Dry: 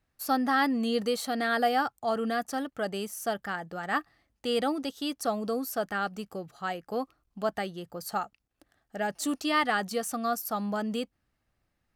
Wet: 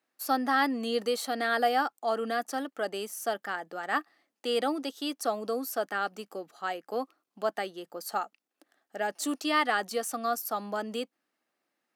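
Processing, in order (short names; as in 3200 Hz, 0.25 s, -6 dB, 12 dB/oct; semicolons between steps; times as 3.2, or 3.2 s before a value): HPF 260 Hz 24 dB/oct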